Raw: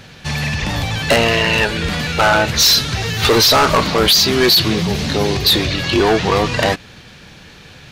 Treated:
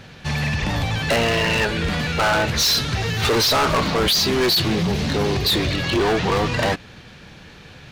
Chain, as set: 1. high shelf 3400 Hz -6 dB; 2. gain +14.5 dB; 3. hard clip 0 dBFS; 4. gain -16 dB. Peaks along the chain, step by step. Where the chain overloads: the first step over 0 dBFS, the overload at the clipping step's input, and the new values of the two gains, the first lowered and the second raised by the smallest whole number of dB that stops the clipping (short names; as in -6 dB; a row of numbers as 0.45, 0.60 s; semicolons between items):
-8.5, +6.0, 0.0, -16.0 dBFS; step 2, 6.0 dB; step 2 +8.5 dB, step 4 -10 dB